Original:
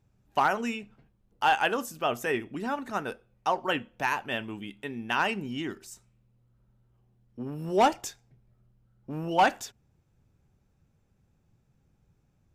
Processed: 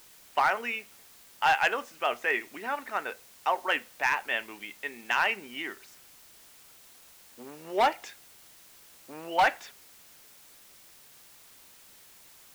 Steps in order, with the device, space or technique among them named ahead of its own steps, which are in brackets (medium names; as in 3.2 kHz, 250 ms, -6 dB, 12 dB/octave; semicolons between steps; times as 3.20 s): drive-through speaker (band-pass 500–3600 Hz; peaking EQ 2.1 kHz +9 dB 0.59 oct; hard clipper -16 dBFS, distortion -16 dB; white noise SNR 22 dB)